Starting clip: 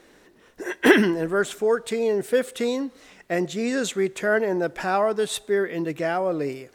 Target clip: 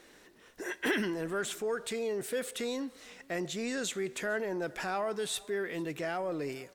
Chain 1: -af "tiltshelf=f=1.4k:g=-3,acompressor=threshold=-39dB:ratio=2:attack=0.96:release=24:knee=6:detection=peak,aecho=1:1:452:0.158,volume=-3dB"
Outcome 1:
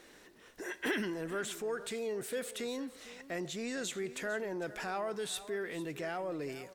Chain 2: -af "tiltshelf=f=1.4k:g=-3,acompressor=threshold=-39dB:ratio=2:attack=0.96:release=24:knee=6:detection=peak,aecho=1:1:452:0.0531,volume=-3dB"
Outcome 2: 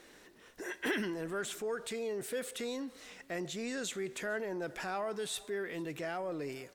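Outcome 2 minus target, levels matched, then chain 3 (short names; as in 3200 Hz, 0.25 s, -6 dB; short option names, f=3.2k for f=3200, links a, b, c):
compressor: peak gain reduction +3.5 dB
-af "tiltshelf=f=1.4k:g=-3,acompressor=threshold=-32dB:ratio=2:attack=0.96:release=24:knee=6:detection=peak,aecho=1:1:452:0.0531,volume=-3dB"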